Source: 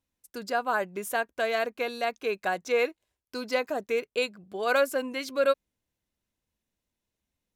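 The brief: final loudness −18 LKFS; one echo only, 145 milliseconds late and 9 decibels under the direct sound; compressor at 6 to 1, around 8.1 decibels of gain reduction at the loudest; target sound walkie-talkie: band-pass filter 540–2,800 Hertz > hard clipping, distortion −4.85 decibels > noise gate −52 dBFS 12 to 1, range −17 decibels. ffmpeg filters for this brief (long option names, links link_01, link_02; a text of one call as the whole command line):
ffmpeg -i in.wav -af "acompressor=threshold=-28dB:ratio=6,highpass=540,lowpass=2800,aecho=1:1:145:0.355,asoftclip=type=hard:threshold=-39dB,agate=range=-17dB:threshold=-52dB:ratio=12,volume=24.5dB" out.wav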